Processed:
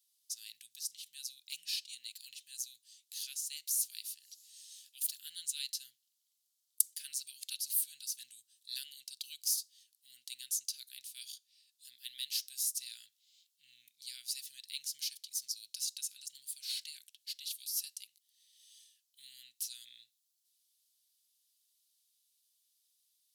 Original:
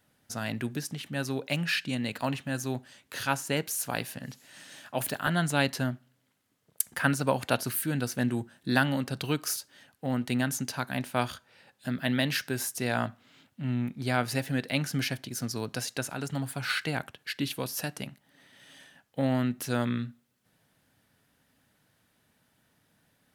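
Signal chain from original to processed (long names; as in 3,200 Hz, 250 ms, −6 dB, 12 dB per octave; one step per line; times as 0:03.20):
inverse Chebyshev high-pass filter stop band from 1,200 Hz, stop band 60 dB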